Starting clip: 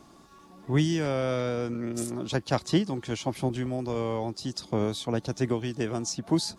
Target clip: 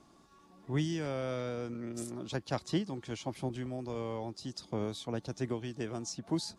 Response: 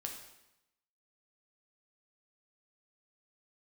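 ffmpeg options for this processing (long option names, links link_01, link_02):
-af "lowpass=12000,volume=-8dB"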